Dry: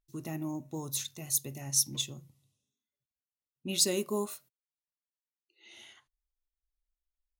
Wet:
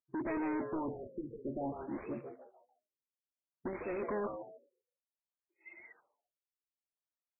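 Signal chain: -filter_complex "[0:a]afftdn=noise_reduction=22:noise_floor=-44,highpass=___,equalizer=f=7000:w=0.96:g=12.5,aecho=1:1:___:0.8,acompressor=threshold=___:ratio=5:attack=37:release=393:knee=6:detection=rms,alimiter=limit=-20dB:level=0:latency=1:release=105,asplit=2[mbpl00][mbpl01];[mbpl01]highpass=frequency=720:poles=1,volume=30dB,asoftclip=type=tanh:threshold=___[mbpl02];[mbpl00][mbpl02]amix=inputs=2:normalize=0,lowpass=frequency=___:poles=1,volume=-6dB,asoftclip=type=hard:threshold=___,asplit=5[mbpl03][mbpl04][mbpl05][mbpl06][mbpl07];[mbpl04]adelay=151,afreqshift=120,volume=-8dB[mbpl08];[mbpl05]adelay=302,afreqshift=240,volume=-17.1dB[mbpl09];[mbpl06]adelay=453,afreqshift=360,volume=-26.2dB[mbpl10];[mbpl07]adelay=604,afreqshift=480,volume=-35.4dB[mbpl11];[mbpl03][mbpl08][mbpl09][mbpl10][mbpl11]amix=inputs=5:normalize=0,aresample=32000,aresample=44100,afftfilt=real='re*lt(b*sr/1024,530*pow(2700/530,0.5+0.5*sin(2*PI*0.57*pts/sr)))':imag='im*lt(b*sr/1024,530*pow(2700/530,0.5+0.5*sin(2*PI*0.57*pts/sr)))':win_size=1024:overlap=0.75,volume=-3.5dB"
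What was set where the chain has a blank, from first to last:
94, 3.2, -22dB, -20dB, 1300, -31dB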